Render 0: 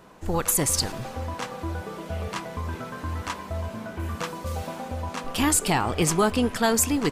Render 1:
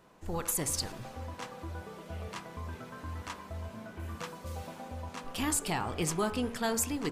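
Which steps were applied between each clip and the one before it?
de-hum 47.15 Hz, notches 36; gain -9 dB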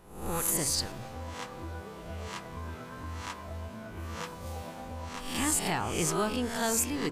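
spectral swells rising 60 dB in 0.62 s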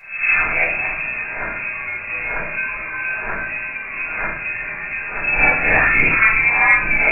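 inverted band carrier 2600 Hz; on a send: flutter echo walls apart 9.3 m, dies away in 0.38 s; on the sum: shoebox room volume 250 m³, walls furnished, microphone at 5.4 m; gain +6.5 dB

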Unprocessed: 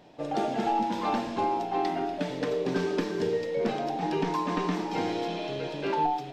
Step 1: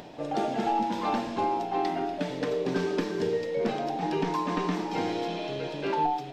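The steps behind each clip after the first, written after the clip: upward compressor, threshold -37 dBFS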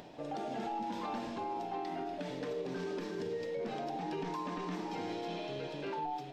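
limiter -24 dBFS, peak gain reduction 9.5 dB; gain -6.5 dB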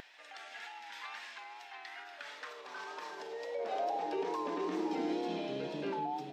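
high-pass sweep 1800 Hz -> 200 Hz, 1.85–5.65; wow and flutter 41 cents

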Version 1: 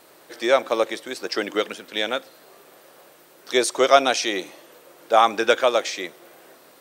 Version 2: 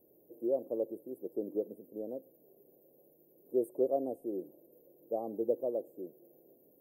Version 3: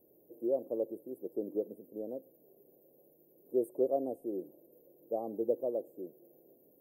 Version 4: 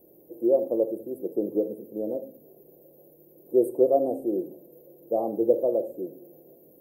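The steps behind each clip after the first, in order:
inverse Chebyshev band-stop 1400–6100 Hz, stop band 60 dB; gain -8.5 dB
nothing audible
shoebox room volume 570 m³, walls furnished, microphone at 0.8 m; gain +9 dB

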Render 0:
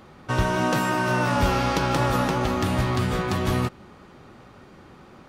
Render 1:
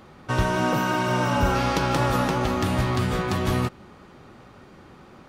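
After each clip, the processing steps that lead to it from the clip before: spectral repair 0.64–1.53, 1400–12000 Hz before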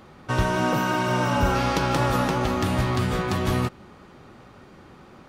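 nothing audible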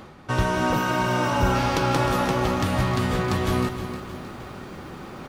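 reverse; upward compressor, threshold -28 dBFS; reverse; echo 0.181 s -14 dB; lo-fi delay 0.311 s, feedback 55%, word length 8-bit, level -11 dB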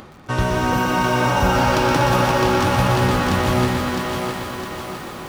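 thinning echo 0.66 s, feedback 51%, high-pass 270 Hz, level -3.5 dB; upward compressor, threshold -43 dBFS; lo-fi delay 0.121 s, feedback 80%, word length 7-bit, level -6 dB; gain +2 dB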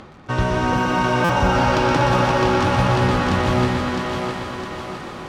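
air absorption 65 m; stuck buffer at 1.24, samples 256, times 8

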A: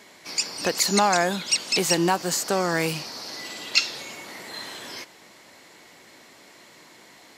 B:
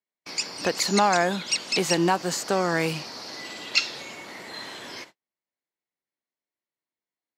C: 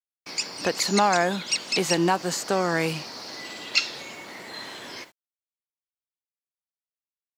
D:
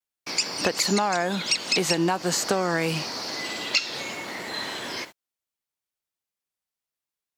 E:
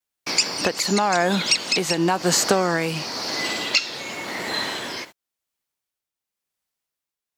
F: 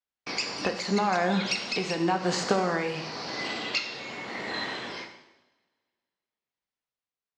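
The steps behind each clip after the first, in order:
gate -43 dBFS, range -46 dB; high shelf 8300 Hz -11.5 dB
bit-crush 10-bit
compressor 10:1, threshold -25 dBFS, peak gain reduction 10.5 dB; vibrato 0.39 Hz 20 cents; gain +6 dB
tremolo triangle 0.94 Hz, depth 55%; gain +6.5 dB
air absorption 130 m; two-slope reverb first 0.93 s, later 2.5 s, from -26 dB, DRR 4.5 dB; gain -6 dB

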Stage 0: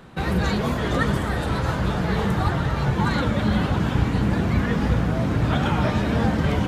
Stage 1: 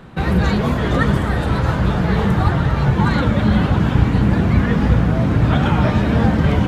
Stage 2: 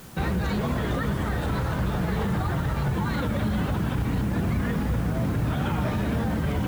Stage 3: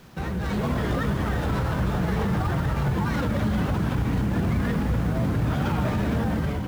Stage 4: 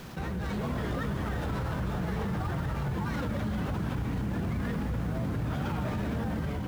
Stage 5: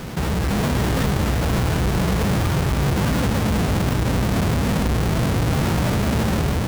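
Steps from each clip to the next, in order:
tone controls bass +3 dB, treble -5 dB; gain +4 dB
limiter -12.5 dBFS, peak gain reduction 10 dB; added noise white -45 dBFS; gain -5.5 dB
AGC gain up to 5.5 dB; running maximum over 5 samples; gain -4 dB
fast leveller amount 50%; gain -8.5 dB
half-waves squared off; gain +7 dB

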